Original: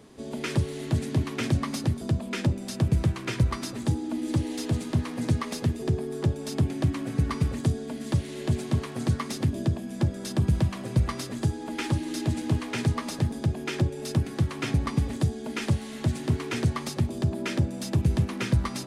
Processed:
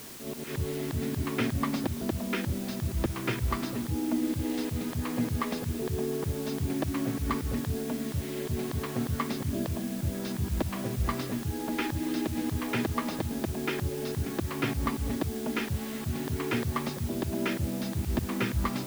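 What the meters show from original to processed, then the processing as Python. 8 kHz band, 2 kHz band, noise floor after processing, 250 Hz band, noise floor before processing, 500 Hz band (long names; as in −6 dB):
−1.5 dB, 0.0 dB, −37 dBFS, −1.5 dB, −38 dBFS, 0.0 dB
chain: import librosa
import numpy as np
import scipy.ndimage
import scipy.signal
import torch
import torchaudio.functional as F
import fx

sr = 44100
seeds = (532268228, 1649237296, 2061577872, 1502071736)

y = fx.air_absorb(x, sr, metres=210.0)
y = fx.auto_swell(y, sr, attack_ms=120.0)
y = fx.quant_dither(y, sr, seeds[0], bits=8, dither='triangular')
y = y * 10.0 ** (2.5 / 20.0)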